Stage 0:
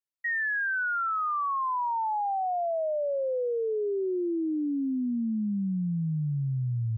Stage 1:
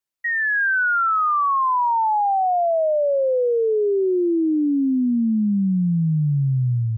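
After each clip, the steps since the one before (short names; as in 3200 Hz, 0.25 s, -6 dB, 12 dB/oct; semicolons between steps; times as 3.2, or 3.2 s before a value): AGC gain up to 3.5 dB; gain +6 dB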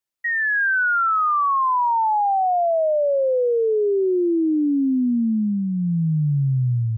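dynamic EQ 190 Hz, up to -4 dB, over -31 dBFS, Q 6.5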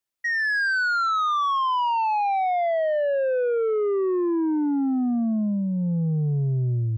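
soft clip -20 dBFS, distortion -18 dB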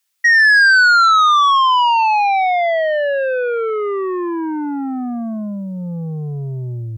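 tilt shelf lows -9.5 dB, about 770 Hz; gain +7.5 dB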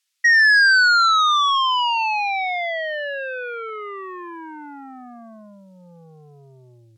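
band-pass 3900 Hz, Q 0.57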